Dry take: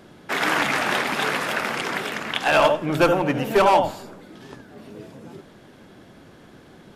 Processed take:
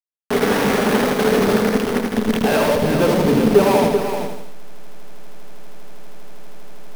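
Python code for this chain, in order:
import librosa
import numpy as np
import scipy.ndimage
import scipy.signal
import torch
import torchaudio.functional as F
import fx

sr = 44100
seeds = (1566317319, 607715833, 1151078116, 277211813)

p1 = fx.delta_hold(x, sr, step_db=-18.0)
p2 = 10.0 ** (-20.5 / 20.0) * np.tanh(p1 / 10.0 ** (-20.5 / 20.0))
p3 = fx.low_shelf(p2, sr, hz=140.0, db=-7.0)
p4 = fx.small_body(p3, sr, hz=(220.0, 420.0), ring_ms=55, db=17)
p5 = 10.0 ** (-34.5 / 20.0) * (np.abs((p4 / 10.0 ** (-34.5 / 20.0) + 3.0) % 4.0 - 2.0) - 1.0)
p6 = p4 + (p5 * 10.0 ** (-3.5 / 20.0))
p7 = fx.peak_eq(p6, sr, hz=7300.0, db=-5.5, octaves=0.21)
p8 = p7 + fx.echo_single(p7, sr, ms=384, db=-8.0, dry=0)
p9 = fx.echo_crushed(p8, sr, ms=80, feedback_pct=55, bits=7, wet_db=-5.0)
y = p9 * 10.0 ** (2.0 / 20.0)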